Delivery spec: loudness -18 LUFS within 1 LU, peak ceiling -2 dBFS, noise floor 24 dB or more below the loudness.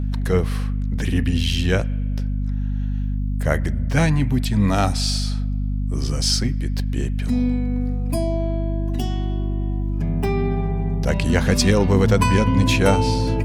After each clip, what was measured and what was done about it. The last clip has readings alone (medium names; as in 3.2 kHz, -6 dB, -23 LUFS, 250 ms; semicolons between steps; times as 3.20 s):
hum 50 Hz; highest harmonic 250 Hz; hum level -20 dBFS; loudness -21.5 LUFS; peak level -4.0 dBFS; loudness target -18.0 LUFS
-> de-hum 50 Hz, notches 5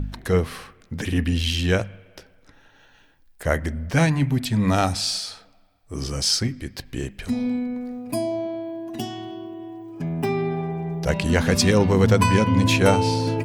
hum not found; loudness -22.5 LUFS; peak level -5.0 dBFS; loudness target -18.0 LUFS
-> trim +4.5 dB; peak limiter -2 dBFS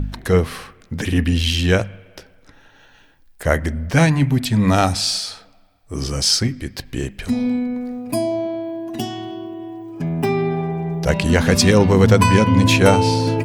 loudness -18.0 LUFS; peak level -2.0 dBFS; noise floor -51 dBFS